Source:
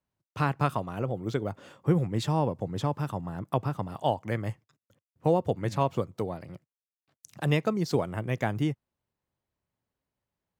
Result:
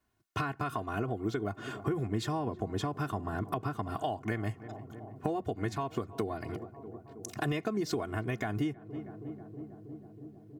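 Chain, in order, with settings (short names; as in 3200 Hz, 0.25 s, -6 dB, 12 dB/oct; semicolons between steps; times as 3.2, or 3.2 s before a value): bell 1500 Hz +5 dB 0.7 oct; limiter -17 dBFS, peak gain reduction 8.5 dB; comb 2.8 ms, depth 99%; darkening echo 0.32 s, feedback 82%, low-pass 1200 Hz, level -22 dB; compressor 6:1, threshold -36 dBFS, peak gain reduction 14.5 dB; bell 190 Hz +13 dB 0.44 oct; gain +4.5 dB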